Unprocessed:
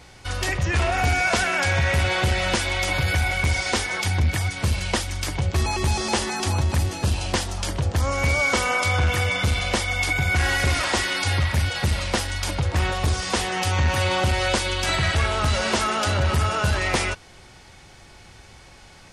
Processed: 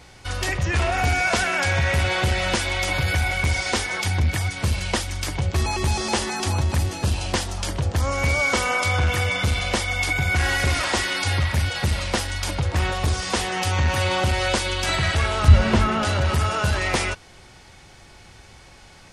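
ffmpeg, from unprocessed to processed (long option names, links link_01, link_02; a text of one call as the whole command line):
ffmpeg -i in.wav -filter_complex "[0:a]asettb=1/sr,asplit=3[link_01][link_02][link_03];[link_01]atrim=end=15.484[link_04];[link_02]atrim=start=15.48:end=16.05,asetpts=PTS-STARTPTS,afade=type=in:duration=0.004:curve=qsin,afade=type=out:start_time=0.566:duration=0.004:curve=qsin,bass=frequency=250:gain=14,treble=frequency=4000:gain=-10[link_05];[link_03]atrim=start=16.046[link_06];[link_04][link_05]acrossfade=duration=0.004:curve1=hsin:curve2=qsin[link_07];[link_07][link_06]acrossfade=duration=0.004:curve1=qsin:curve2=hsin" out.wav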